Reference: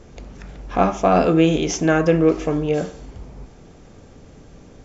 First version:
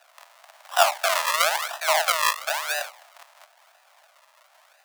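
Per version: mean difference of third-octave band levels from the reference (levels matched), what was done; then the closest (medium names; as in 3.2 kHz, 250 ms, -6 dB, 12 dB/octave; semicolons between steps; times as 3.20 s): 17.0 dB: in parallel at -5 dB: bit crusher 5-bit; on the sum: treble shelf 3.6 kHz -10 dB; decimation with a swept rate 40×, swing 100% 0.99 Hz; steep high-pass 620 Hz 72 dB/octave; trim -3 dB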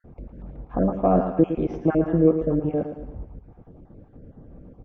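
6.5 dB: random holes in the spectrogram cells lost 32%; Bessel low-pass 610 Hz, order 2; band-stop 410 Hz, Q 12; on a send: feedback delay 111 ms, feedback 45%, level -9.5 dB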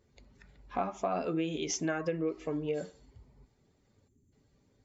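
4.5 dB: expander on every frequency bin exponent 1.5; high-pass 250 Hz 6 dB/octave; compression 5:1, threshold -25 dBFS, peak gain reduction 11 dB; time-frequency box 4.08–4.33 s, 430–6000 Hz -17 dB; trim -4.5 dB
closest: third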